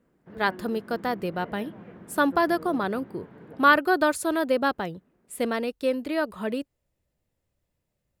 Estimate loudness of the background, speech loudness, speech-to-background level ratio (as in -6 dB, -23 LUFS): -45.0 LUFS, -26.0 LUFS, 19.0 dB